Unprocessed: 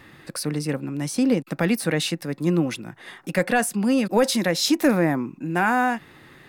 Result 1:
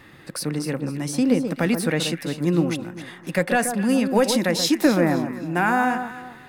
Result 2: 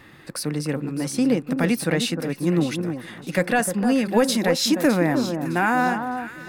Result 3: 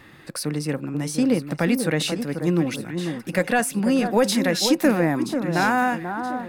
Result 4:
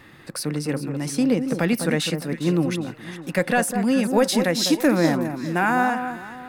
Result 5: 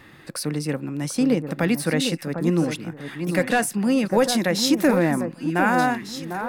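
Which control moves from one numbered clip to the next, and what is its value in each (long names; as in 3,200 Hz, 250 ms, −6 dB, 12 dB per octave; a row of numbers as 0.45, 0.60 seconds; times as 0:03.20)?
delay that swaps between a low-pass and a high-pass, delay time: 131, 305, 488, 203, 750 milliseconds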